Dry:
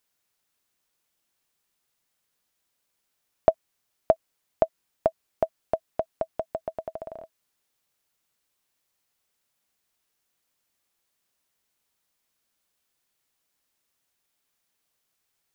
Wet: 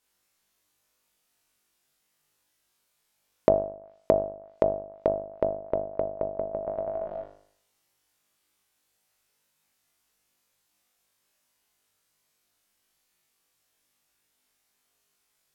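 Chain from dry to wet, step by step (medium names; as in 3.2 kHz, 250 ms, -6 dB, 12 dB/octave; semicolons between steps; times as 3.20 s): flutter echo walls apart 3.4 m, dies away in 0.6 s; low-pass that closes with the level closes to 560 Hz, closed at -24.5 dBFS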